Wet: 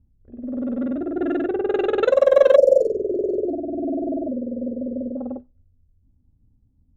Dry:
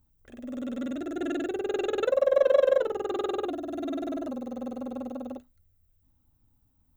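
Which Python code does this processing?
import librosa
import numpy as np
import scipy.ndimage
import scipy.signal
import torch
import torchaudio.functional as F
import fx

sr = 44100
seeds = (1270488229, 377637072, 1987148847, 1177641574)

y = fx.rev_double_slope(x, sr, seeds[0], early_s=0.25, late_s=1.5, knee_db=-28, drr_db=19.0)
y = fx.env_lowpass(y, sr, base_hz=310.0, full_db=-19.0)
y = fx.spec_erase(y, sr, start_s=2.56, length_s=2.61, low_hz=700.0, high_hz=4200.0)
y = y * 10.0 ** (8.0 / 20.0)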